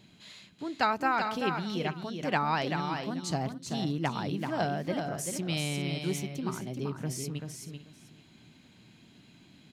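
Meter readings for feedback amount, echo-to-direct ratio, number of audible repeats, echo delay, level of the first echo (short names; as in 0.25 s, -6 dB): no steady repeat, -5.5 dB, 3, 0.386 s, -6.0 dB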